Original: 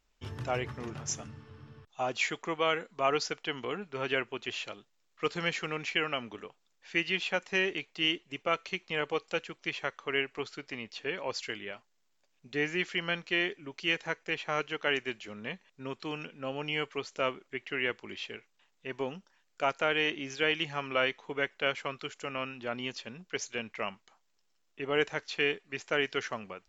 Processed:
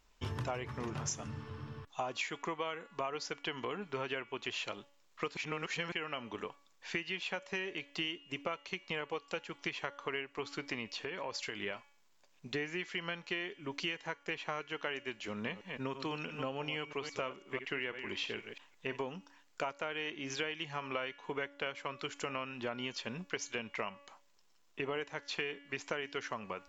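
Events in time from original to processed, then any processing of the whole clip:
0:05.37–0:05.92: reverse
0:10.85–0:11.63: downward compressor, threshold −41 dBFS
0:15.28–0:19.03: delay that plays each chunk backwards 165 ms, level −10.5 dB
whole clip: parametric band 1,000 Hz +6 dB 0.26 octaves; hum removal 283.9 Hz, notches 12; downward compressor 10 to 1, threshold −40 dBFS; level +5.5 dB

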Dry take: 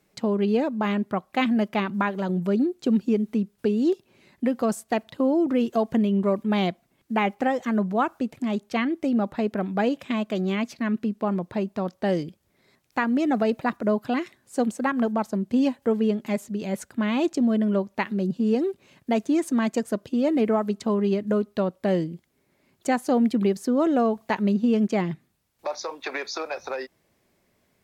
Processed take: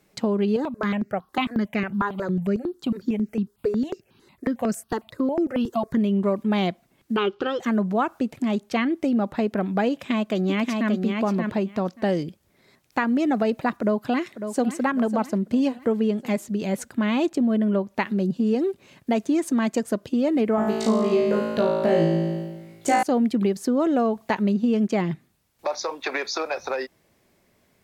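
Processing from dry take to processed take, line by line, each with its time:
0:00.56–0:05.97: step-sequenced phaser 11 Hz 650–3,400 Hz
0:07.16–0:07.60: drawn EQ curve 160 Hz 0 dB, 240 Hz −13 dB, 380 Hz +10 dB, 710 Hz −17 dB, 1,400 Hz +9 dB, 2,000 Hz −17 dB, 3,100 Hz +8 dB, 5,100 Hz −1 dB, 9,100 Hz −23 dB
0:09.91–0:10.91: delay throw 580 ms, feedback 10%, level −4 dB
0:13.80–0:14.67: delay throw 550 ms, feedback 45%, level −12.5 dB
0:17.29–0:17.88: parametric band 5,900 Hz −7.5 dB 0.96 octaves
0:20.56–0:23.03: flutter between parallel walls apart 3.1 metres, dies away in 1.1 s
whole clip: downward compressor 2 to 1, threshold −25 dBFS; level +4 dB

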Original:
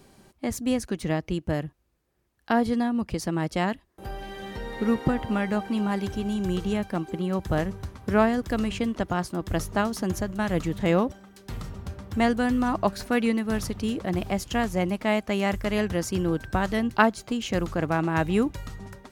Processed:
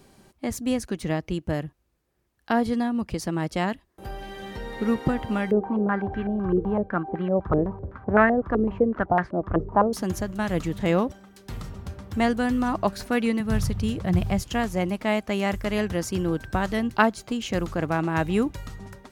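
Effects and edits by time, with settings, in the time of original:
0:05.51–0:09.93: low-pass on a step sequencer 7.9 Hz 410–1,800 Hz
0:13.40–0:14.42: low shelf with overshoot 190 Hz +9 dB, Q 1.5

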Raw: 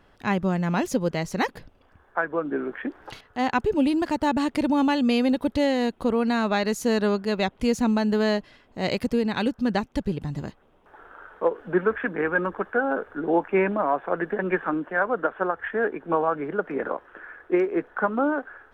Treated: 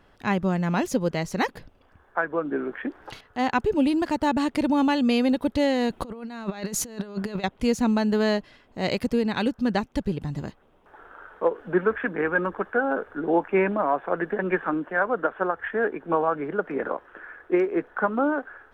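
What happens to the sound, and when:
0:05.90–0:07.44: compressor whose output falls as the input rises −30 dBFS, ratio −0.5

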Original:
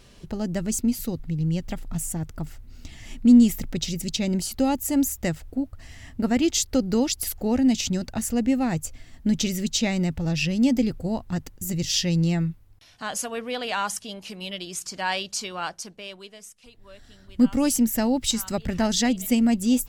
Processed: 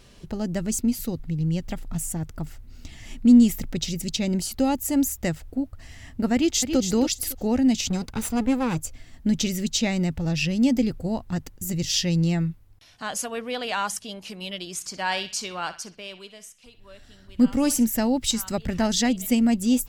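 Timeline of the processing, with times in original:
0:06.34–0:06.78: delay throw 280 ms, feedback 20%, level −7.5 dB
0:07.90–0:08.82: lower of the sound and its delayed copy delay 0.81 ms
0:14.74–0:17.87: feedback echo with a band-pass in the loop 62 ms, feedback 43%, band-pass 2,300 Hz, level −11 dB

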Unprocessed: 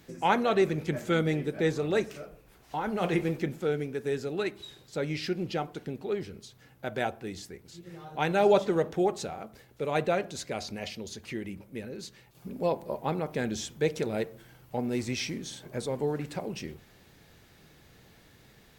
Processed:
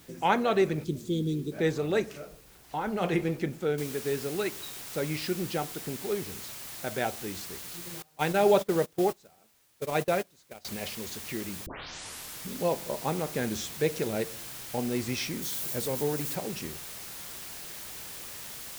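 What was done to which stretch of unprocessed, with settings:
0:00.84–0:01.52: elliptic band-stop filter 380–3,600 Hz, stop band 80 dB
0:03.78: noise floor change −58 dB −42 dB
0:08.02–0:10.65: noise gate −31 dBFS, range −24 dB
0:11.66: tape start 0.83 s
0:15.42–0:16.35: spike at every zero crossing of −33.5 dBFS

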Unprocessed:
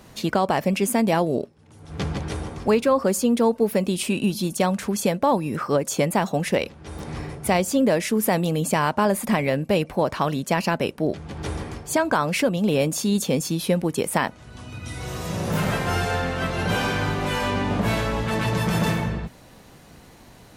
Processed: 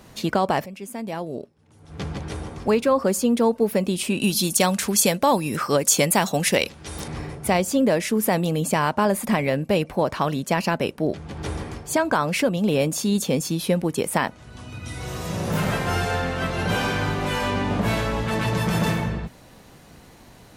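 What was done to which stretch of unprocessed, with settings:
0:00.66–0:02.93: fade in, from −17 dB
0:04.20–0:07.08: high-shelf EQ 2,400 Hz +12 dB

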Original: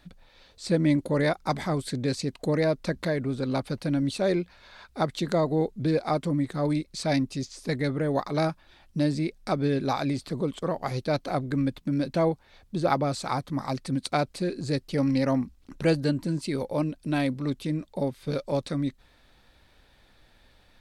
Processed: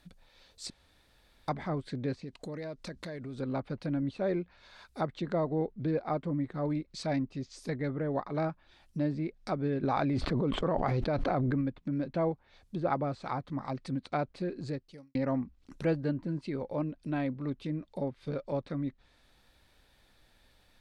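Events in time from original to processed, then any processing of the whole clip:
0:00.70–0:01.48: fill with room tone
0:02.17–0:03.40: downward compressor 3 to 1, threshold −33 dBFS
0:09.83–0:11.61: envelope flattener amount 100%
0:14.66–0:15.15: fade out quadratic
whole clip: treble cut that deepens with the level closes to 1,900 Hz, closed at −25.5 dBFS; high-shelf EQ 7,000 Hz +8.5 dB; level −6 dB

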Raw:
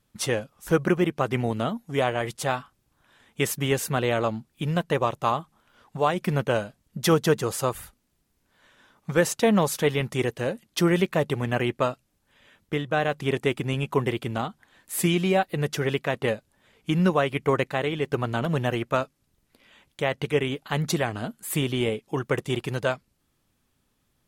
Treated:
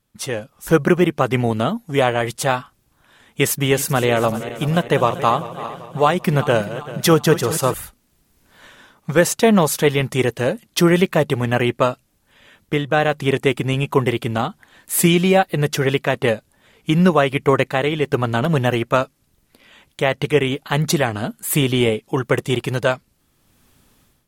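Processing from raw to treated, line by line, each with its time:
0:03.52–0:07.74: feedback delay that plays each chunk backwards 195 ms, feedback 69%, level −13 dB
whole clip: high-shelf EQ 11,000 Hz +4 dB; automatic gain control gain up to 16.5 dB; level −1 dB

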